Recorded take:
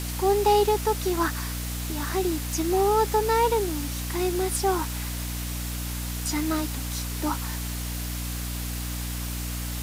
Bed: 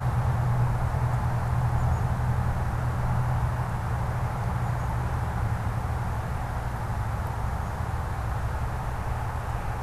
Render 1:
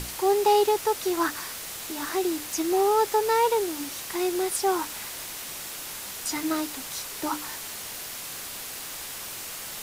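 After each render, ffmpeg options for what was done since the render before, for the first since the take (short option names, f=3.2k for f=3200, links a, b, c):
-af "bandreject=f=60:t=h:w=6,bandreject=f=120:t=h:w=6,bandreject=f=180:t=h:w=6,bandreject=f=240:t=h:w=6,bandreject=f=300:t=h:w=6"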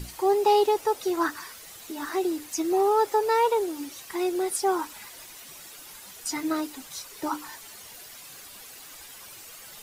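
-af "afftdn=nr=11:nf=-37"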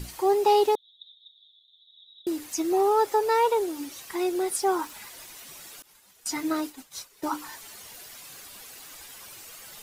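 -filter_complex "[0:a]asettb=1/sr,asplit=3[a][b][c];[a]atrim=end=0.754[d];[b]atrim=start=0.75:end=2.27,asetpts=PTS-STARTPTS,afade=t=in:d=0.004:c=qsin,afade=t=out:st=1.516:d=0.004:c=qsin,asuperpass=centerf=3600:order=8:qfactor=6.8[e];[c]atrim=start=2.266[f];[d][e]acrossfade=d=0.004:c1=hsin:c2=qsin[g];[g][f]acrossfade=d=0.004:c1=qsin:c2=hsin,asettb=1/sr,asplit=3[h][i][j];[h]atrim=end=4.214[k];[i]atrim=start=4.21:end=4.95,asetpts=PTS-STARTPTS,afade=t=in:d=0.004:c=qsin,afade=t=out:st=0.736:d=0.004:c=qsin,aeval=exprs='val(0)*gte(abs(val(0)),0.00398)':c=same[l];[j]atrim=start=4.946[m];[k][l]acrossfade=d=0.004:c1=hsin:c2=qsin[n];[n][m]acrossfade=d=0.004:c1=qsin:c2=hsin,asettb=1/sr,asplit=3[o][p][q];[o]atrim=end=5.824[r];[p]atrim=start=5.82:end=7.31,asetpts=PTS-STARTPTS,afade=t=in:d=0.004:c=qsin,afade=t=out:st=1.486:d=0.004:c=qsin,agate=range=-33dB:threshold=-37dB:ratio=3:release=100:detection=peak[s];[q]atrim=start=7.306[t];[r][s]acrossfade=d=0.004:c1=hsin:c2=qsin[u];[u][t]acrossfade=d=0.004:c1=qsin:c2=hsin"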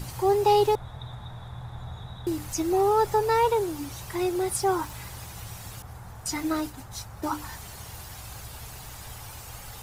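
-filter_complex "[1:a]volume=-14dB[a];[0:a][a]amix=inputs=2:normalize=0"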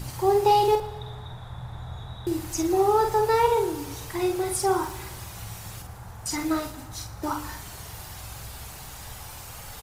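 -filter_complex "[0:a]asplit=2[a][b];[b]adelay=47,volume=-5dB[c];[a][c]amix=inputs=2:normalize=0,aecho=1:1:117|234|351|468|585:0.141|0.0777|0.0427|0.0235|0.0129"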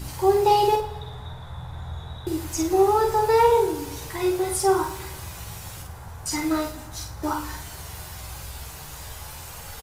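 -af "aecho=1:1:13|49:0.596|0.422"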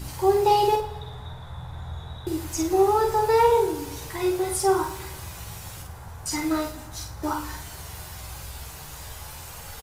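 -af "volume=-1dB"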